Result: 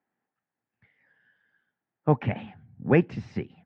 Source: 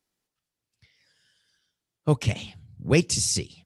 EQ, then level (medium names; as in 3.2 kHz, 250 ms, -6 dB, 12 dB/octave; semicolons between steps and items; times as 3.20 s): cabinet simulation 130–2100 Hz, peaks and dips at 230 Hz +6 dB, 800 Hz +9 dB, 1.7 kHz +7 dB; 0.0 dB